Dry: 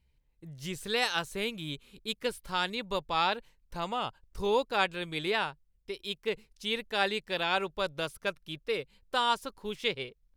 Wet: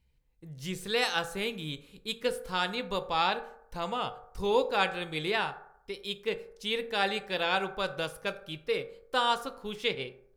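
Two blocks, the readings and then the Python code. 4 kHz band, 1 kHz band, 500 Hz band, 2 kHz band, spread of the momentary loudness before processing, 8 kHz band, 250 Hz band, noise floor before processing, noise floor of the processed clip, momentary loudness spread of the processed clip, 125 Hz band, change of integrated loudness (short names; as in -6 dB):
0.0 dB, +0.5 dB, +1.5 dB, +0.5 dB, 11 LU, 0.0 dB, +0.5 dB, -71 dBFS, -65 dBFS, 11 LU, +1.0 dB, +0.5 dB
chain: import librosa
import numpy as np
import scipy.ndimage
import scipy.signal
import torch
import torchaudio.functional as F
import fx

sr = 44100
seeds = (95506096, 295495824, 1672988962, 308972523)

y = fx.rev_fdn(x, sr, rt60_s=0.72, lf_ratio=0.75, hf_ratio=0.4, size_ms=12.0, drr_db=8.0)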